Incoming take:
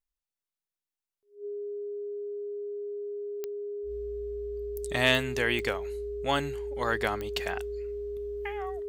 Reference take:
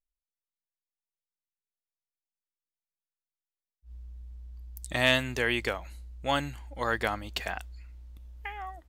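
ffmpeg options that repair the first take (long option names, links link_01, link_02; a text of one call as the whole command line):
ffmpeg -i in.wav -af "adeclick=threshold=4,bandreject=frequency=410:width=30" out.wav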